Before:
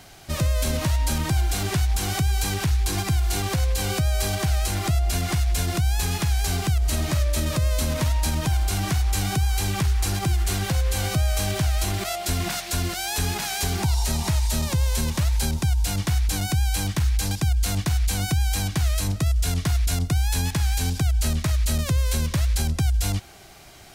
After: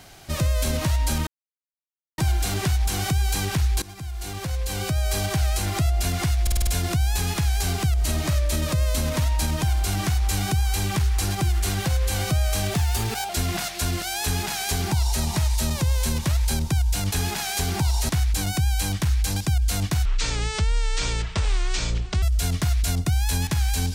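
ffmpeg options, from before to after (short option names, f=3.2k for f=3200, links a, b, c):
-filter_complex "[0:a]asplit=14[a][b][c][d][e][f][g][h][i][j][k][l][m][n];[a]atrim=end=1.27,asetpts=PTS-STARTPTS,afade=t=out:st=1.266:d=0.004:c=hsin,apad=pad_dur=0.91[o];[b]atrim=start=1.27:end=2.91,asetpts=PTS-STARTPTS,afade=t=in:d=0.004:c=hsin,afade=t=out:st=1.636:d=0.004:c=hsin:silence=0.11885[p];[c]atrim=start=2.91:end=5.562,asetpts=PTS-STARTPTS,afade=t=in:d=1.39:silence=0.11885[q];[d]atrim=start=5.508:end=5.562[r];[e]atrim=start=5.508:end=5.562[s];[f]atrim=start=5.508:end=5.562[t];[g]atrim=start=5.508:end=5.562[u];[h]atrim=start=5.508:end=11.584[v];[i]atrim=start=11.58:end=12.21,asetpts=PTS-STARTPTS,asetrate=50274,aresample=44100,atrim=end_sample=24371,asetpts=PTS-STARTPTS[w];[j]atrim=start=12.206:end=16.042[x];[k]atrim=start=13.158:end=14.132[y];[l]atrim=start=16.038:end=18.004[z];[m]atrim=start=18:end=19.26,asetpts=PTS-STARTPTS,asetrate=25578,aresample=44100,atrim=end_sample=95803,asetpts=PTS-STARTPTS[aa];[n]atrim=start=19.256[ab];[o][p][q]concat=n=3:v=0:a=1[ac];[ac][r]acrossfade=d=0.004:c1=hsin:c2=hsin[ad];[ad][s]acrossfade=d=0.004:c1=hsin:c2=hsin[ae];[ae][t]acrossfade=d=0.004:c1=hsin:c2=hsin[af];[af][u]acrossfade=d=0.004:c1=hsin:c2=hsin[ag];[ag][v]acrossfade=d=0.004:c1=hsin:c2=hsin[ah];[ah][w]acrossfade=d=0.004:c1=hsin:c2=hsin[ai];[ai][x]acrossfade=d=0.004:c1=hsin:c2=hsin[aj];[aj][y]acrossfade=d=0.004:c1=hsin:c2=hsin[ak];[ak][z]acrossfade=d=0.004:c1=hsin:c2=hsin[al];[al][aa]acrossfade=d=0.004:c1=hsin:c2=hsin[am];[am][ab]acrossfade=d=0.004:c1=hsin:c2=hsin"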